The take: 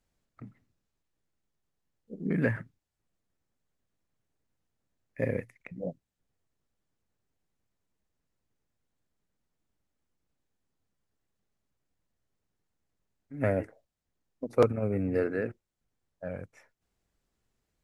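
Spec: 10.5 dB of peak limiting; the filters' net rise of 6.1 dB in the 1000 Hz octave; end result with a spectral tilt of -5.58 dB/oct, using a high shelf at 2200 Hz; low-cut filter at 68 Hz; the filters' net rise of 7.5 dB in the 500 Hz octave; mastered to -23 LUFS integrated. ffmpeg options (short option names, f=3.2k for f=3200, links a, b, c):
-af "highpass=68,equalizer=f=500:t=o:g=7,equalizer=f=1k:t=o:g=8,highshelf=f=2.2k:g=-8.5,volume=6dB,alimiter=limit=-9dB:level=0:latency=1"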